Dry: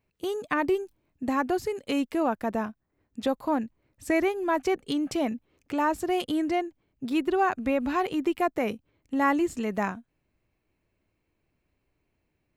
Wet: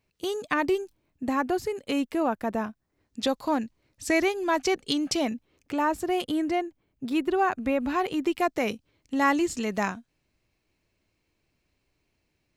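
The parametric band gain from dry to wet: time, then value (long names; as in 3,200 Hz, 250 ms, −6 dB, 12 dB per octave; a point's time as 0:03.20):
parametric band 5,100 Hz 1.7 octaves
0:00.72 +7.5 dB
0:01.31 +1 dB
0:02.56 +1 dB
0:03.22 +11.5 dB
0:05.11 +11.5 dB
0:05.83 +0.5 dB
0:07.94 +0.5 dB
0:08.58 +10.5 dB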